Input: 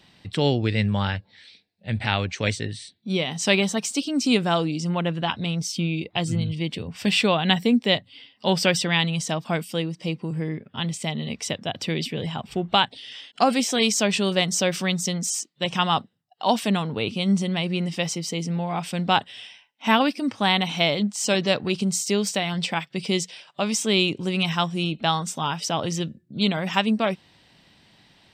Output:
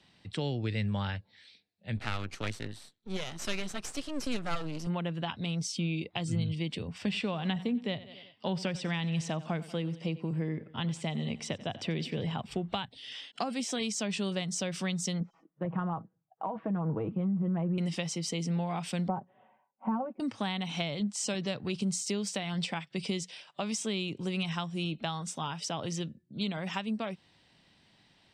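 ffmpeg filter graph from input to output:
ffmpeg -i in.wav -filter_complex "[0:a]asettb=1/sr,asplit=3[link_01][link_02][link_03];[link_01]atrim=end=1.974[link_04];[link_02]atrim=start=1.97:end=4.87,asetpts=PTS-STARTPTS,afade=type=in:duration=0.004:curve=qsin,afade=type=out:start_time=2.896:duration=0.004:curve=qsin,equalizer=frequency=1300:width_type=o:width=0.24:gain=15,aeval=exprs='max(val(0),0)':channel_layout=same[link_05];[link_03]atrim=start=4.866[link_06];[link_04][link_05]acrossfade=duration=0.004:curve1=hsin:curve2=qsin[link_07];[link_07][link_06]acrossfade=duration=0.004:curve1=qsin:curve2=hsin,asettb=1/sr,asplit=3[link_08][link_09][link_10];[link_08]atrim=end=6.984[link_11];[link_09]atrim=start=6.98:end=12.39,asetpts=PTS-STARTPTS,afade=type=in:duration=0.004:curve=qsin,afade=type=out:start_time=5.406:duration=0.004:curve=qsin,highshelf=frequency=4700:gain=-11.5,aecho=1:1:91|182|273|364:0.106|0.0583|0.032|0.0176,atrim=end_sample=238581[link_12];[link_10]atrim=start=12.386[link_13];[link_11][link_12]acrossfade=duration=0.004:curve1=hsin:curve2=qsin[link_14];[link_14][link_13]acrossfade=duration=0.004:curve1=qsin:curve2=hsin,asettb=1/sr,asplit=3[link_15][link_16][link_17];[link_15]atrim=end=15.204[link_18];[link_16]atrim=start=15.2:end=17.78,asetpts=PTS-STARTPTS,afade=type=in:duration=0.004:curve=qsin,afade=type=out:start_time=2.576:duration=0.004:curve=qsin,lowpass=frequency=1300:width=0.5412,lowpass=frequency=1300:width=1.3066,aecho=1:1:6.2:0.58,atrim=end_sample=113778,acompressor=threshold=-21dB:ratio=6:attack=3.2:release=140:knee=1:detection=peak[link_19];[link_17]atrim=start=17.776[link_20];[link_18][link_19]acrossfade=duration=0.004:curve1=hsin:curve2=qsin[link_21];[link_21][link_20]acrossfade=duration=0.004:curve1=qsin:curve2=hsin,asettb=1/sr,asplit=3[link_22][link_23][link_24];[link_22]atrim=end=19.084[link_25];[link_23]atrim=start=19.08:end=20.2,asetpts=PTS-STARTPTS,afade=type=in:duration=0.004:curve=qsin,afade=type=out:start_time=1.116:duration=0.004:curve=qsin,lowpass=frequency=1000:width=0.5412,lowpass=frequency=1000:width=1.3066,lowshelf=frequency=110:gain=-9.5,aecho=1:1:5.3:0.94,atrim=end_sample=49392[link_26];[link_24]atrim=start=20.196[link_27];[link_25][link_26]acrossfade=duration=0.004:curve1=hsin:curve2=qsin[link_28];[link_28][link_27]acrossfade=duration=0.004:curve1=qsin:curve2=hsin,dynaudnorm=framelen=480:gausssize=21:maxgain=11.5dB,lowpass=frequency=11000:width=0.5412,lowpass=frequency=11000:width=1.3066,acrossover=split=160[link_29][link_30];[link_30]acompressor=threshold=-23dB:ratio=10[link_31];[link_29][link_31]amix=inputs=2:normalize=0,volume=-8dB" out.wav

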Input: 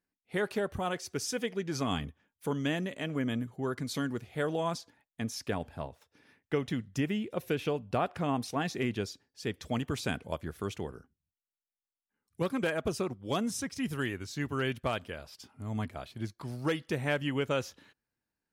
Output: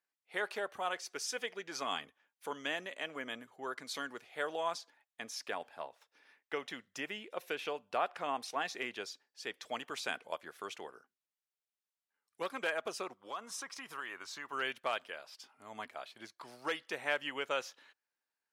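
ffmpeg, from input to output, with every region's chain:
ffmpeg -i in.wav -filter_complex "[0:a]asettb=1/sr,asplit=3[link_01][link_02][link_03];[link_01]atrim=end=13.174[link_04];[link_02]atrim=start=13.17:end=14.53,asetpts=PTS-STARTPTS,afade=type=in:duration=0.004:curve=qsin,afade=type=out:start_time=1.356:duration=0.004:curve=qsin,equalizer=frequency=1100:width_type=o:width=0.81:gain=11,acompressor=threshold=-34dB:ratio=10:attack=3.2:release=140:knee=1:detection=peak[link_05];[link_03]atrim=start=14.526[link_06];[link_04][link_05]acrossfade=duration=0.004:curve1=hsin:curve2=qsin[link_07];[link_07][link_06]acrossfade=duration=0.004:curve1=qsin:curve2=hsin,highpass=680,highshelf=frequency=8300:gain=-8.5" out.wav

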